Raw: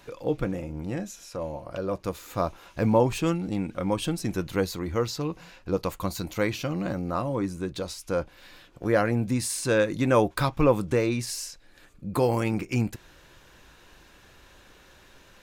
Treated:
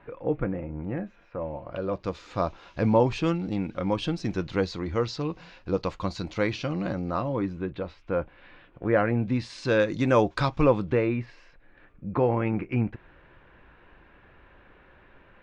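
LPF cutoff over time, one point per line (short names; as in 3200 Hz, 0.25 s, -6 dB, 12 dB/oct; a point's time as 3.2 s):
LPF 24 dB/oct
1.37 s 2200 Hz
2.09 s 5200 Hz
7.15 s 5200 Hz
7.75 s 2700 Hz
8.97 s 2700 Hz
9.96 s 6200 Hz
10.6 s 6200 Hz
11.13 s 2400 Hz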